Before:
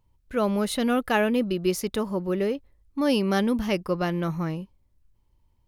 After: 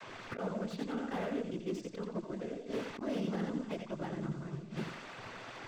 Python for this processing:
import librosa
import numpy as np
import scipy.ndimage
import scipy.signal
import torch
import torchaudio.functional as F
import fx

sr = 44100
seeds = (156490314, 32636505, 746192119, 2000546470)

p1 = fx.wiener(x, sr, points=9)
p2 = fx.quant_dither(p1, sr, seeds[0], bits=8, dither='triangular')
p3 = p2 + fx.echo_feedback(p2, sr, ms=87, feedback_pct=37, wet_db=-5, dry=0)
p4 = fx.env_lowpass(p3, sr, base_hz=1600.0, full_db=-18.0)
p5 = fx.noise_vocoder(p4, sr, seeds[1], bands=16)
p6 = fx.gate_flip(p5, sr, shuts_db=-23.0, range_db=-26)
p7 = fx.backlash(p6, sr, play_db=-43.5)
p8 = p6 + (p7 * 10.0 ** (-8.0 / 20.0))
p9 = fx.over_compress(p8, sr, threshold_db=-44.0, ratio=-1.0)
p10 = fx.slew_limit(p9, sr, full_power_hz=5.1)
y = p10 * 10.0 ** (9.5 / 20.0)